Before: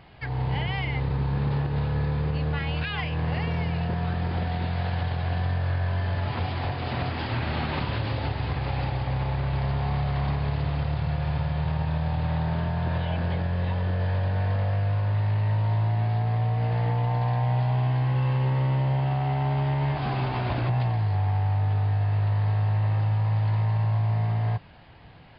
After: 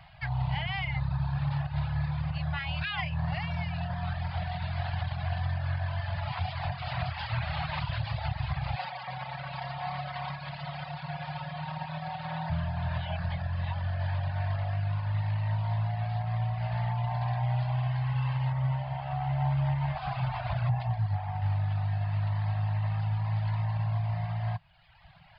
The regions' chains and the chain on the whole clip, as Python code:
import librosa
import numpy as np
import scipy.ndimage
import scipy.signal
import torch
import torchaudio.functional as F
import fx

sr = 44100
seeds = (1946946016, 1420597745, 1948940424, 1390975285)

y = fx.chain(x, sr, fx.highpass(hz=240.0, slope=12),
    fx.comb(ms=5.4, depth=0.72), at=(8.76, 12.5))
y = fx.chain(y, sr, fx.high_shelf(hz=2400.0, db=-5.5),
    fx.echo_single(ms=116, db=-12.0), at=(18.52, 21.42))
y = scipy.signal.sosfilt(scipy.signal.ellip(3, 1.0, 40, [160.0, 650.0], 'bandstop', fs=sr, output='sos'), y)
y = fx.dereverb_blind(y, sr, rt60_s=1.2)